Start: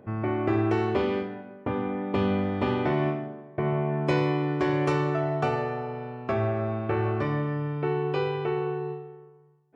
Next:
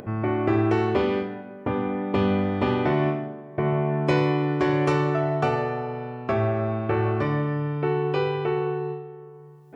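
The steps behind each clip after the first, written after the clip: upward compressor, threshold -37 dBFS; gain +3 dB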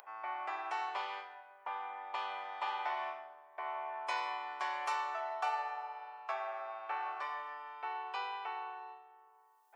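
ladder high-pass 770 Hz, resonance 60%; tilt +3 dB/oct; gain -3.5 dB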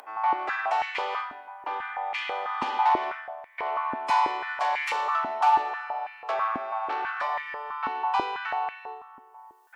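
added harmonics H 5 -13 dB, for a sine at -23.5 dBFS; stepped high-pass 6.1 Hz 260–2100 Hz; gain +2 dB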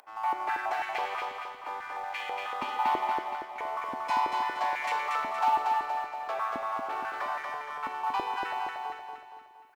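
G.711 law mismatch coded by A; on a send: feedback echo 0.234 s, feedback 47%, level -3.5 dB; on the sum: gain -4.5 dB

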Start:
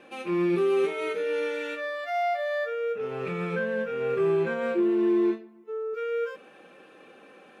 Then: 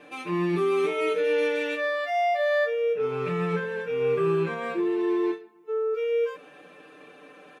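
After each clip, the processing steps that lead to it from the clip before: comb 6.8 ms, depth 90%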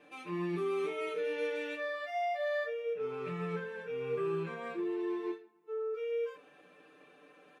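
flange 0.37 Hz, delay 9 ms, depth 7.1 ms, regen -64%; gain -6 dB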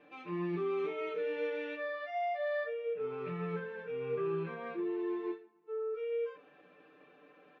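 air absorption 220 m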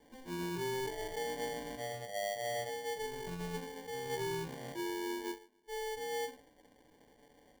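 sample-rate reducer 1300 Hz, jitter 0%; gain -3 dB

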